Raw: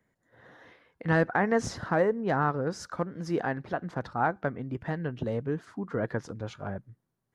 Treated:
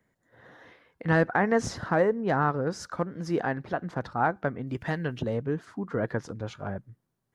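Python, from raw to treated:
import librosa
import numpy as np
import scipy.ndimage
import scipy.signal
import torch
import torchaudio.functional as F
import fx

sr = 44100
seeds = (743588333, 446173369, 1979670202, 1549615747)

y = fx.high_shelf(x, sr, hz=2200.0, db=10.5, at=(4.67, 5.22))
y = y * 10.0 ** (1.5 / 20.0)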